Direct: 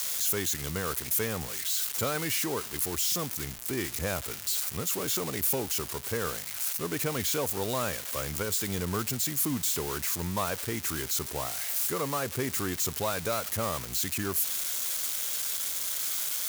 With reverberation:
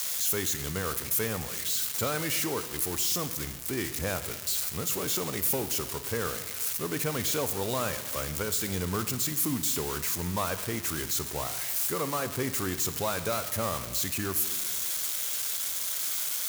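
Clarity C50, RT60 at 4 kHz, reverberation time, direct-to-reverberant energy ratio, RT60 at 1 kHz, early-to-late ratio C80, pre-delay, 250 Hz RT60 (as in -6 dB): 12.0 dB, 1.3 s, 1.5 s, 10.5 dB, 1.4 s, 13.5 dB, 16 ms, 1.7 s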